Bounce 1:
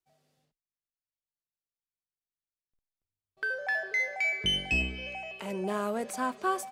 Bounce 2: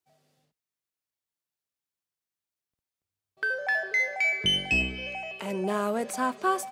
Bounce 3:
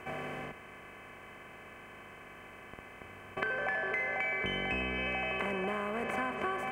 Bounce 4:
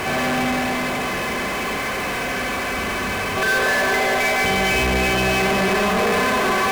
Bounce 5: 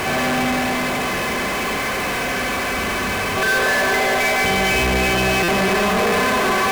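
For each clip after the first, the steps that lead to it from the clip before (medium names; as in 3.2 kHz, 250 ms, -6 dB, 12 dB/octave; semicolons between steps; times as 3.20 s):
high-pass 73 Hz; trim +3.5 dB
spectral levelling over time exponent 0.4; high-order bell 6.8 kHz -16 dB 2.3 oct; compression 8:1, threshold -31 dBFS, peak gain reduction 13 dB
two-band feedback delay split 980 Hz, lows 303 ms, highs 153 ms, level -7 dB; Schroeder reverb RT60 1.6 s, combs from 32 ms, DRR -3.5 dB; power-law waveshaper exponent 0.35; trim +2 dB
jump at every zero crossing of -29.5 dBFS; buffer glitch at 5.43 s, samples 256, times 8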